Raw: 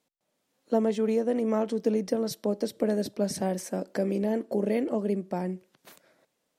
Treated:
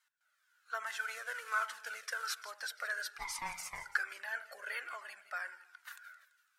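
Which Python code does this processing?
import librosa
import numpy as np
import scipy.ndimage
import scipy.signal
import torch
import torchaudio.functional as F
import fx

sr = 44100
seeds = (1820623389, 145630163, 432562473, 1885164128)

y = fx.cvsd(x, sr, bps=64000, at=(0.86, 2.45))
y = fx.ladder_highpass(y, sr, hz=1400.0, resonance_pct=85)
y = fx.ring_mod(y, sr, carrier_hz=580.0, at=(3.18, 3.84))
y = fx.echo_split(y, sr, split_hz=2400.0, low_ms=81, high_ms=168, feedback_pct=52, wet_db=-14.5)
y = fx.comb_cascade(y, sr, direction='falling', hz=1.2)
y = y * 10.0 ** (15.0 / 20.0)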